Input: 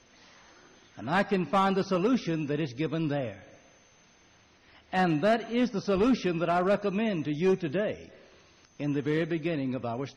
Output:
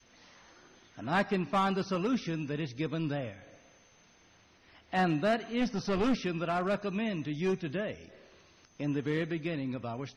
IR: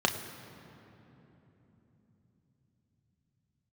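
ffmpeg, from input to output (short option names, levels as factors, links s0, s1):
-filter_complex "[0:a]adynamicequalizer=threshold=0.0112:dfrequency=480:dqfactor=0.73:tfrequency=480:tqfactor=0.73:attack=5:release=100:ratio=0.375:range=2.5:mode=cutabove:tftype=bell,asplit=3[s0][s1][s2];[s0]afade=t=out:st=5.6:d=0.02[s3];[s1]aeval=exprs='0.112*(cos(1*acos(clip(val(0)/0.112,-1,1)))-cos(1*PI/2))+0.0316*(cos(2*acos(clip(val(0)/0.112,-1,1)))-cos(2*PI/2))+0.01*(cos(5*acos(clip(val(0)/0.112,-1,1)))-cos(5*PI/2))':c=same,afade=t=in:st=5.6:d=0.02,afade=t=out:st=6.14:d=0.02[s4];[s2]afade=t=in:st=6.14:d=0.02[s5];[s3][s4][s5]amix=inputs=3:normalize=0,volume=0.794"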